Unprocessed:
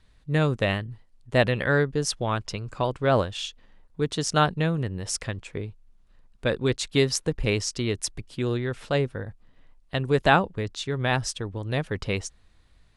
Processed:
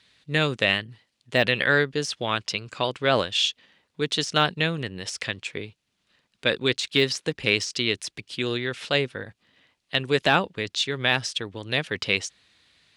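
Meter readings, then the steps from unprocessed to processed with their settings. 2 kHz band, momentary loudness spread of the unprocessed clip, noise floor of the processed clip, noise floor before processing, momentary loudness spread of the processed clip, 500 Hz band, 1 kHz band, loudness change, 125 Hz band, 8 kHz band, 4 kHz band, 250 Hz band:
+5.0 dB, 11 LU, -76 dBFS, -59 dBFS, 10 LU, -0.5 dB, -1.0 dB, +1.5 dB, -5.5 dB, -2.5 dB, +7.5 dB, -2.0 dB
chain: high-pass 79 Hz; de-esser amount 75%; frequency weighting D

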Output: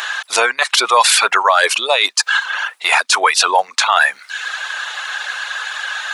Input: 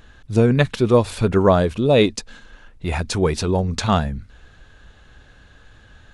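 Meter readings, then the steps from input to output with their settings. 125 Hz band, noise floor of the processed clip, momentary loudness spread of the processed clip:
under -40 dB, -47 dBFS, 11 LU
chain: reverb removal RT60 0.62 s; high-pass 890 Hz 24 dB/octave; reverse; compression 16:1, threshold -36 dBFS, peak gain reduction 19.5 dB; reverse; loudness maximiser +33 dB; trim -1 dB

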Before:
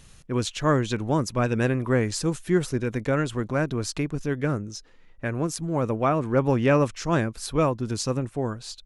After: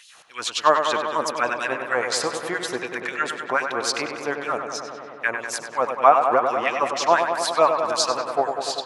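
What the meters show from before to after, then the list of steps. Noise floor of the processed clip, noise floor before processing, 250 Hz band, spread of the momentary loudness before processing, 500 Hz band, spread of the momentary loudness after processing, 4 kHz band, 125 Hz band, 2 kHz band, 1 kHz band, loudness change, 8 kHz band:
-41 dBFS, -52 dBFS, -10.0 dB, 7 LU, +2.5 dB, 10 LU, +8.5 dB, -21.5 dB, +7.5 dB, +10.0 dB, +3.0 dB, +5.0 dB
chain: recorder AGC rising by 7.9 dB/s; tilt EQ -1.5 dB/octave; compression, threshold -17 dBFS, peak gain reduction 5 dB; LFO high-pass sine 3.9 Hz 700–4000 Hz; on a send: filtered feedback delay 97 ms, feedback 84%, low-pass 3.1 kHz, level -6.5 dB; on the sum: trim +7 dB

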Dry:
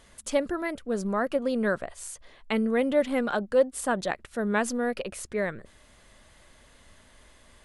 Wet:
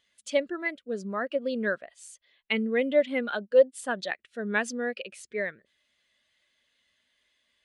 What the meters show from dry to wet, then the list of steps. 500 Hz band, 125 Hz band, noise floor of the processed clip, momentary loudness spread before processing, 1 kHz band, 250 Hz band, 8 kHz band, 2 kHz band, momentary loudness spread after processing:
0.0 dB, no reading, -74 dBFS, 10 LU, -5.5 dB, -4.5 dB, -6.0 dB, +2.0 dB, 12 LU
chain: frequency weighting D; spectral contrast expander 1.5:1; trim -4.5 dB

